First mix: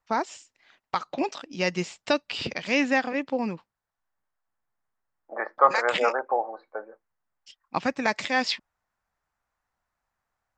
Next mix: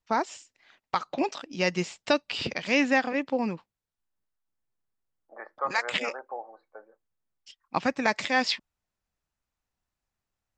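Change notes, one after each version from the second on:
second voice -12.0 dB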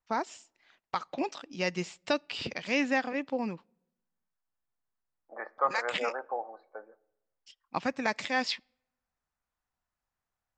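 first voice -5.5 dB; reverb: on, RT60 0.90 s

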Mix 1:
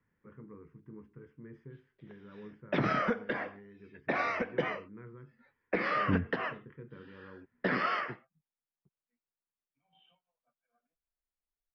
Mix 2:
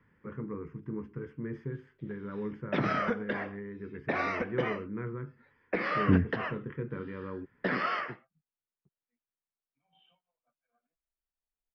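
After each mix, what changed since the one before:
first voice +12.0 dB; second voice +6.5 dB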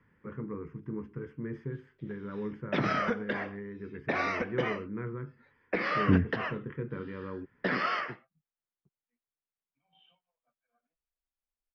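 background: add treble shelf 4.3 kHz +8 dB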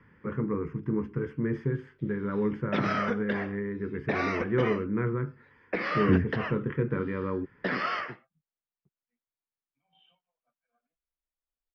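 first voice +8.5 dB

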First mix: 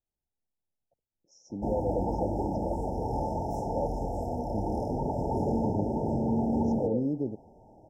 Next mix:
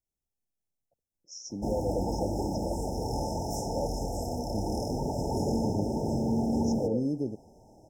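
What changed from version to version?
master: add resonant high shelf 2.1 kHz +14 dB, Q 3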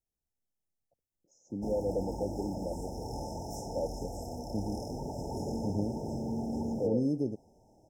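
first voice: add boxcar filter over 8 samples; background -7.0 dB

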